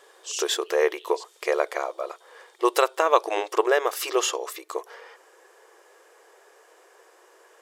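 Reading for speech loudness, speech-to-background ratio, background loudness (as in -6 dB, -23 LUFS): -25.5 LUFS, 11.0 dB, -36.5 LUFS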